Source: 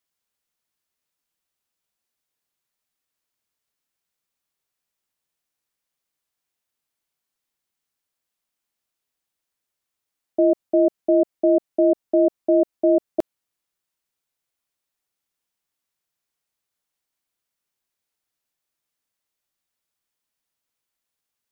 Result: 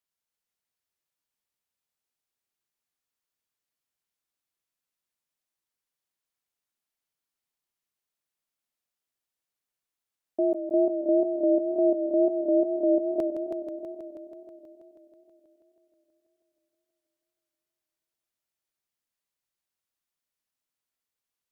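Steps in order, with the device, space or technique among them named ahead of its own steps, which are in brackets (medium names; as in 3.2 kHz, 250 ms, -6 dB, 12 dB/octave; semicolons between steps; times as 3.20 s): multi-head tape echo (multi-head delay 161 ms, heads first and second, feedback 65%, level -9.5 dB; wow and flutter); trim -7.5 dB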